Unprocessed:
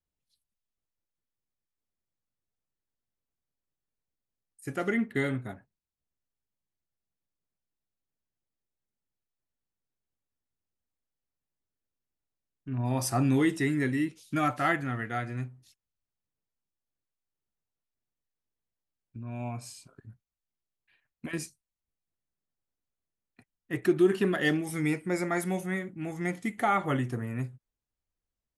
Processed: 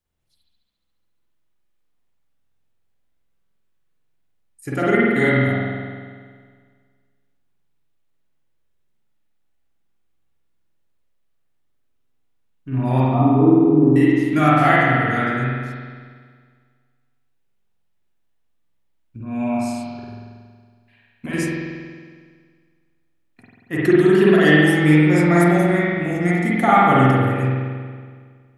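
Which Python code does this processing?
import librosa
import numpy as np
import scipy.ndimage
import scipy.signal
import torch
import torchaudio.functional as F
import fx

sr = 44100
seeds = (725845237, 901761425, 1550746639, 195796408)

y = fx.cheby_ripple(x, sr, hz=1200.0, ripple_db=3, at=(13.0, 13.96))
y = fx.rev_spring(y, sr, rt60_s=1.8, pass_ms=(46,), chirp_ms=25, drr_db=-7.0)
y = F.gain(torch.from_numpy(y), 6.0).numpy()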